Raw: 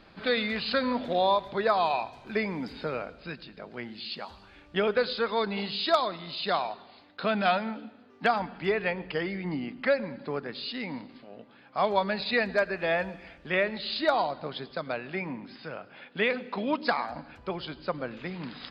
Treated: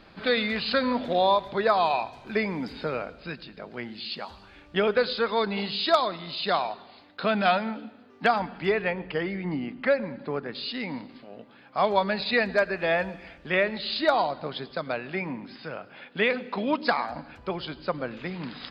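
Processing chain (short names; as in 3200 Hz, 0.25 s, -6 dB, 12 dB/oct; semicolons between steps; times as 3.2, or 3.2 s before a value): 8.81–10.55 air absorption 150 m; gain +2.5 dB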